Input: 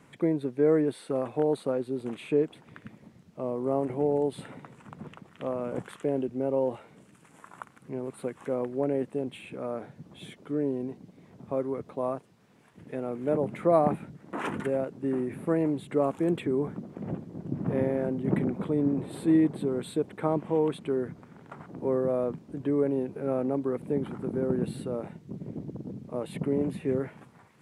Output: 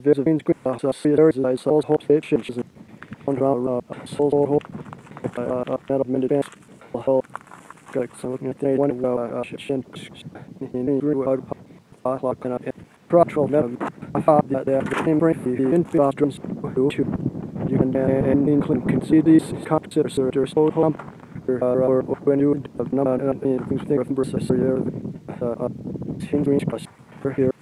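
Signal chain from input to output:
slices reordered back to front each 131 ms, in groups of 5
level +8.5 dB

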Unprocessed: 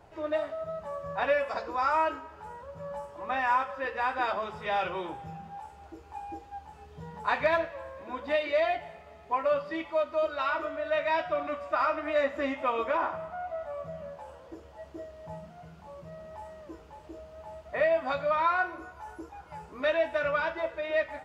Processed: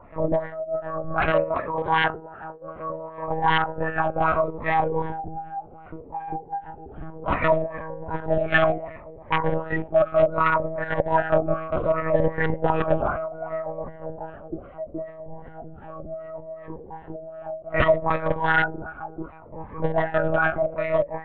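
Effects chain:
high-frequency loss of the air 110 metres
wrap-around overflow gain 21 dB
auto-filter low-pass sine 2.6 Hz 440–1,900 Hz
one-pitch LPC vocoder at 8 kHz 160 Hz
0:01.30–0:03.28: low-shelf EQ 120 Hz −11.5 dB
phaser whose notches keep moving one way falling 0.67 Hz
level +8.5 dB

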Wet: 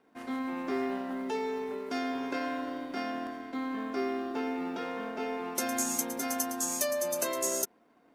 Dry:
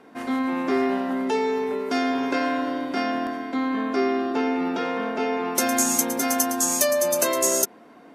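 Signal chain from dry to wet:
mu-law and A-law mismatch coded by A
level −9 dB

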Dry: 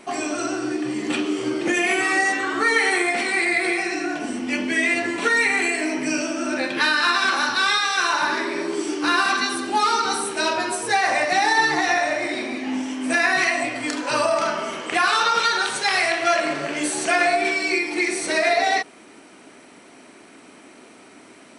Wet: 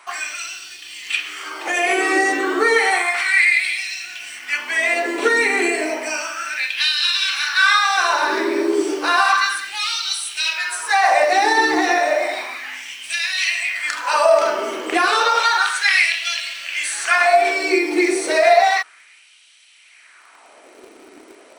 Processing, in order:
auto-filter high-pass sine 0.32 Hz 340–3,200 Hz
hum removal 89.01 Hz, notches 3
in parallel at −11 dB: bit-depth reduction 6 bits, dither none
on the sum: level −1 dB

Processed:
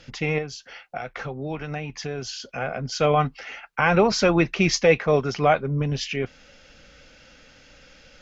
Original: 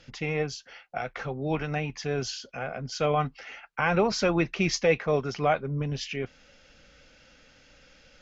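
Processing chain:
0:00.38–0:02.40: downward compressor 2.5 to 1, threshold −36 dBFS, peak gain reduction 9 dB
level +5.5 dB

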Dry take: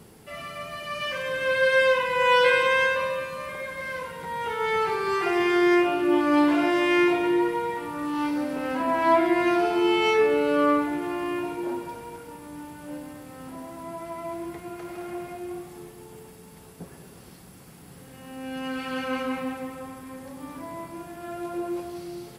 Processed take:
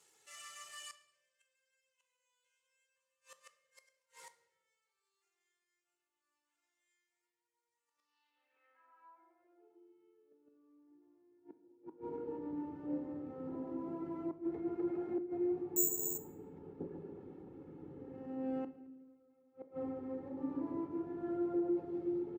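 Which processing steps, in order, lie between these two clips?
running median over 9 samples
reverb reduction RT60 0.51 s
mains-hum notches 60/120/180/240/300/360/420/480 Hz
comb filter 2.3 ms, depth 60%
downward compressor 4 to 1, threshold −30 dBFS, peak gain reduction 13.5 dB
bucket-brigade delay 140 ms, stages 4,096, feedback 42%, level −7 dB
gate with flip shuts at −26 dBFS, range −36 dB
band-pass filter sweep 7,400 Hz → 280 Hz, 0:07.84–0:09.92
0:15.76–0:16.18: bad sample-rate conversion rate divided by 6×, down filtered, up zero stuff
convolution reverb RT60 1.1 s, pre-delay 8 ms, DRR 10 dB
level +5.5 dB

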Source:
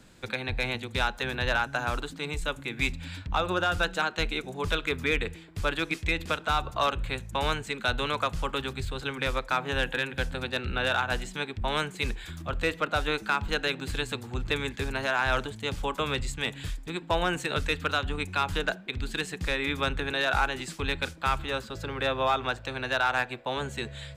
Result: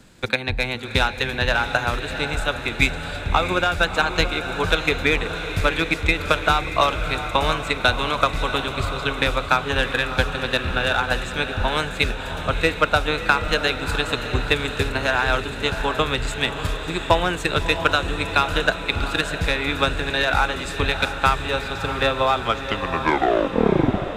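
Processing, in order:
turntable brake at the end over 1.85 s
transient designer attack +8 dB, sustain 0 dB
feedback delay with all-pass diffusion 675 ms, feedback 63%, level −9 dB
level +4 dB

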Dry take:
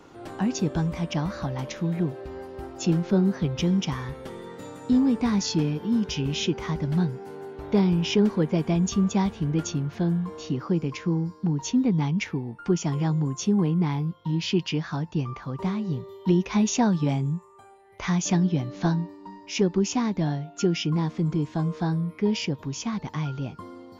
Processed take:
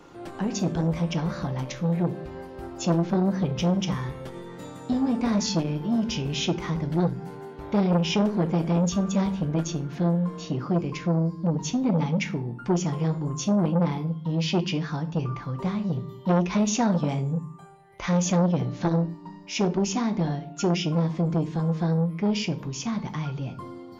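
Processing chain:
rectangular room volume 450 cubic metres, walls furnished, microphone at 0.84 metres
saturating transformer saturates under 610 Hz

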